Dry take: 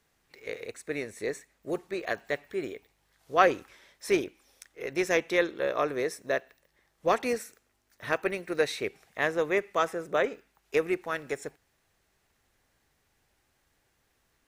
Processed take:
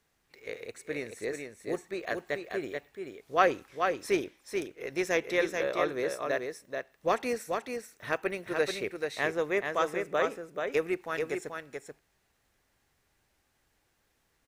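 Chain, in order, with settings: echo 0.434 s -5 dB; gain -2.5 dB

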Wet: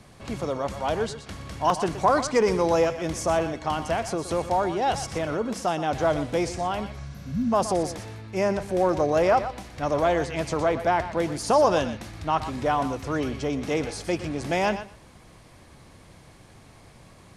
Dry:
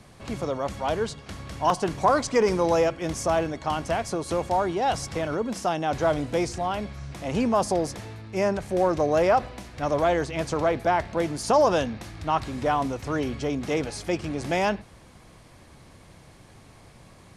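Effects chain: spectral repair 7.12–7.5, 270–11000 Hz before; thinning echo 0.121 s, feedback 15%, level -11 dB

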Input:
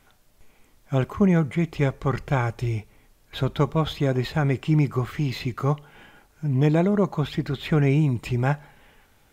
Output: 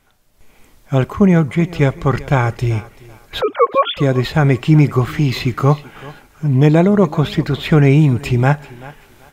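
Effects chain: 3.41–3.97 sine-wave speech; AGC gain up to 13.5 dB; thinning echo 0.385 s, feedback 28%, high-pass 230 Hz, level -18 dB

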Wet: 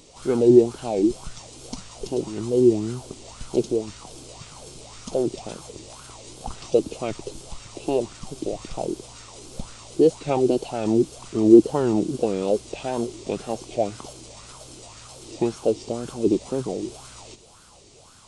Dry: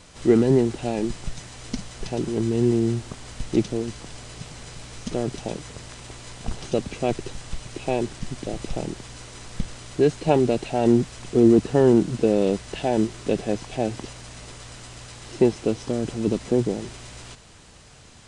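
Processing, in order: bell 1700 Hz -13 dB 0.6 oct; wow and flutter 140 cents; high shelf 3000 Hz +8.5 dB; LFO bell 1.9 Hz 320–1500 Hz +16 dB; gain -6.5 dB

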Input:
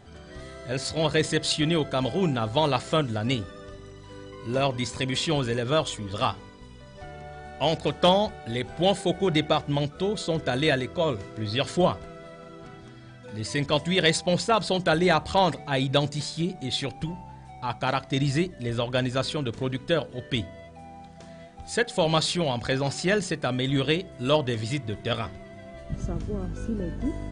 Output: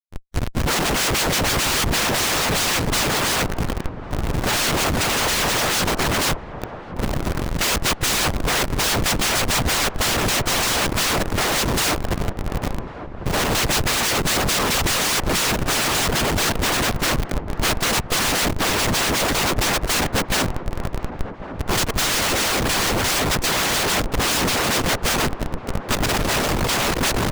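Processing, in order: spectral delete 23.9–24.12, 200–1200 Hz; FDN reverb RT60 2.1 s, low-frequency decay 1.45×, high-frequency decay 0.65×, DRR 19.5 dB; in parallel at -0.5 dB: compressor 8:1, threshold -34 dBFS, peak gain reduction 18.5 dB; on the sum: noise vocoder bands 1; Schmitt trigger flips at -27.5 dBFS; harmoniser +5 st -9 dB; harmonic-percussive split percussive +7 dB; on a send: dark delay 1.098 s, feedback 60%, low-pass 1100 Hz, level -10.5 dB

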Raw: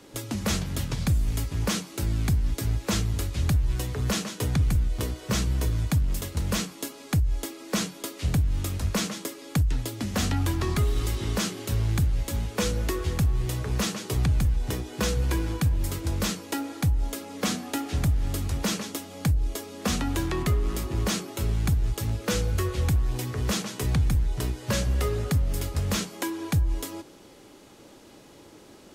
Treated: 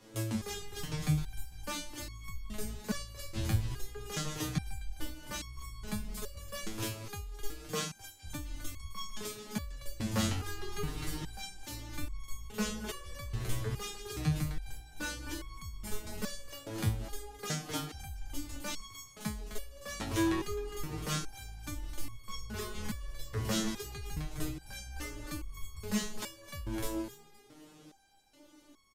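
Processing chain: flange 1.3 Hz, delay 5.1 ms, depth 8.8 ms, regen +68%; frequency-shifting echo 0.259 s, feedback 32%, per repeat -100 Hz, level -7.5 dB; stepped resonator 2.4 Hz 110–1100 Hz; gain +9 dB

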